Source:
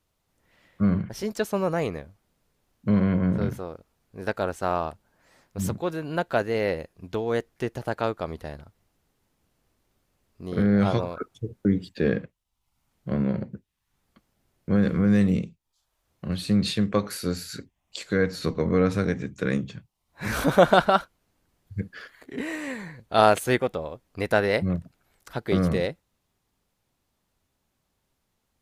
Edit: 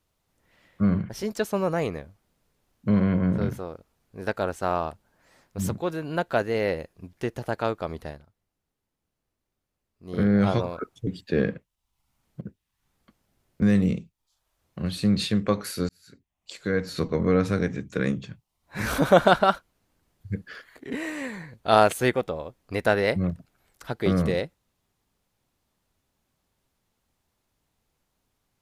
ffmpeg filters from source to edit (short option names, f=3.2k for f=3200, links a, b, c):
-filter_complex "[0:a]asplit=8[a][b][c][d][e][f][g][h];[a]atrim=end=7.132[i];[b]atrim=start=7.518:end=8.68,asetpts=PTS-STARTPTS,afade=t=out:st=0.962:d=0.2:c=qua:silence=0.266073[j];[c]atrim=start=8.68:end=10.35,asetpts=PTS-STARTPTS,volume=-11.5dB[k];[d]atrim=start=10.35:end=11.462,asetpts=PTS-STARTPTS,afade=t=in:d=0.2:c=qua:silence=0.266073[l];[e]atrim=start=11.748:end=13.092[m];[f]atrim=start=13.488:end=14.702[n];[g]atrim=start=15.078:end=17.35,asetpts=PTS-STARTPTS,afade=t=out:st=2.268:d=0.004:c=hsin[o];[h]atrim=start=17.35,asetpts=PTS-STARTPTS,afade=t=in:d=1.14[p];[j][k][l]concat=n=3:v=0:a=1[q];[i][q]acrossfade=d=0.004:c1=hsin:c2=hsin[r];[r][m]acrossfade=d=0.004:c1=hsin:c2=hsin[s];[s][n]acrossfade=d=0.004:c1=hsin:c2=hsin[t];[o][p]concat=n=2:v=0:a=1[u];[t][u]acrossfade=d=0.004:c1=hsin:c2=hsin"